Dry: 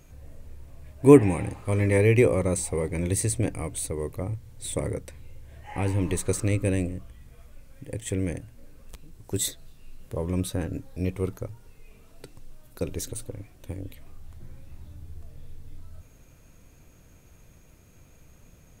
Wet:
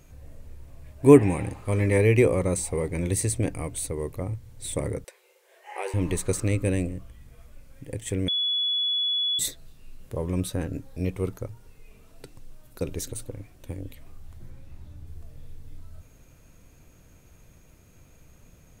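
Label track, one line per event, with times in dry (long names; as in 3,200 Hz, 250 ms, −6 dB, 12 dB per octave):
5.040000	5.940000	linear-phase brick-wall high-pass 350 Hz
8.280000	9.390000	beep over 3,400 Hz −22.5 dBFS
14.500000	15.070000	high-shelf EQ 7,700 Hz −5.5 dB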